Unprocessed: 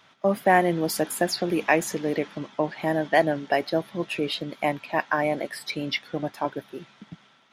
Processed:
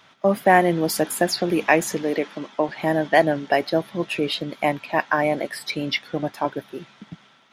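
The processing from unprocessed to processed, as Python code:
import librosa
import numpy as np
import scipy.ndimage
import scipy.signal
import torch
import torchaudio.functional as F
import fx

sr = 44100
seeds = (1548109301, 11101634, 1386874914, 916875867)

y = fx.highpass(x, sr, hz=230.0, slope=12, at=(2.03, 2.69))
y = y * librosa.db_to_amplitude(3.5)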